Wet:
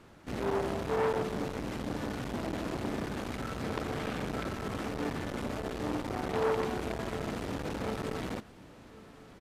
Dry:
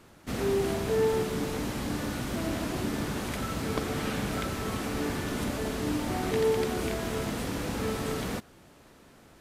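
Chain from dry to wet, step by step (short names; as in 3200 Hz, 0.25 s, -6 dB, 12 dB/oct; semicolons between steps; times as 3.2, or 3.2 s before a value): LPF 3800 Hz 6 dB/oct; echo 1.091 s -22.5 dB; core saturation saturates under 1400 Hz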